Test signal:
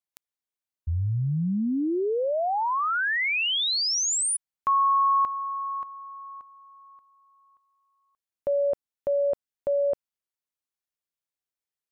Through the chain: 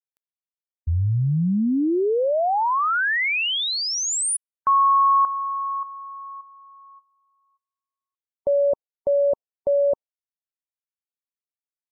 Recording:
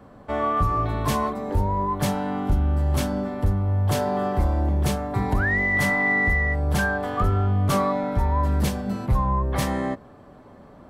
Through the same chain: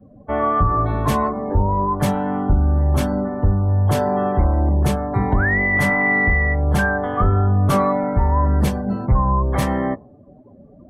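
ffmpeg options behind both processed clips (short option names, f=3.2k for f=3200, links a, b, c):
-af "afftdn=nr=27:nf=-40,equalizer=f=5k:t=o:w=1.8:g=-5,volume=5dB"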